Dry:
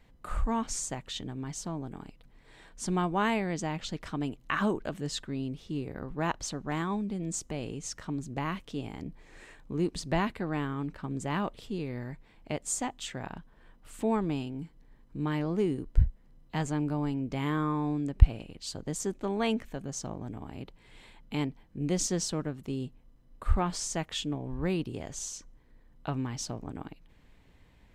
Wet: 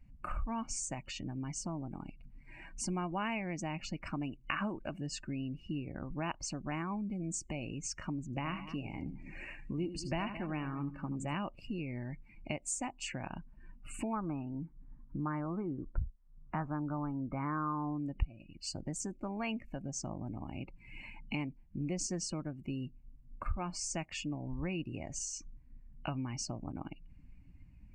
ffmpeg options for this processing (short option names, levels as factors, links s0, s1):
-filter_complex "[0:a]asettb=1/sr,asplit=3[s0][s1][s2];[s0]atrim=end=8.254[s3];[s1]atrim=start=8.25:end=11.35,asetpts=PTS-STARTPTS,afade=t=in:d=0.004:c=qsin,afade=t=out:st=3.096:d=0.004:c=qsin,aecho=1:1:78|93|217:0.282|0.133|0.15,atrim=end_sample=136710[s4];[s2]atrim=start=11.346[s5];[s3][s4]acrossfade=d=0.004:c1=hsin:c2=qsin[s6];[s6][s5]acrossfade=d=0.004:c1=qsin:c2=hsin,asettb=1/sr,asplit=3[s7][s8][s9];[s7]atrim=end=14.134[s10];[s8]atrim=start=14.13:end=17.99,asetpts=PTS-STARTPTS,afade=t=in:d=0.004:c=qsin,afade=t=out:st=3.856:d=0.004:c=qsin,lowpass=f=1300:t=q:w=2.6[s11];[s9]atrim=start=17.986[s12];[s10][s11]acrossfade=d=0.004:c1=hsin:c2=qsin[s13];[s13][s12]acrossfade=d=0.004:c1=qsin:c2=hsin,acompressor=threshold=0.00631:ratio=2.5,superequalizer=7b=0.398:12b=2:13b=0.282,afftdn=nr=20:nf=-54,volume=1.78"